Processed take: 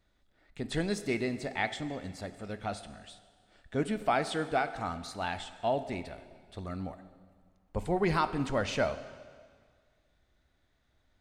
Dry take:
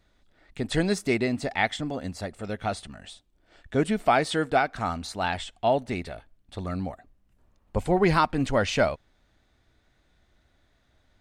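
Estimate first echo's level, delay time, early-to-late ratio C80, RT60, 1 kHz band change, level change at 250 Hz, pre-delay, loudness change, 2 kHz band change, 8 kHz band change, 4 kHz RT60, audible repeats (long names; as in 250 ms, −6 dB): no echo audible, no echo audible, 14.0 dB, 1.8 s, −6.5 dB, −6.5 dB, 6 ms, −6.5 dB, −6.5 dB, −6.5 dB, 1.7 s, no echo audible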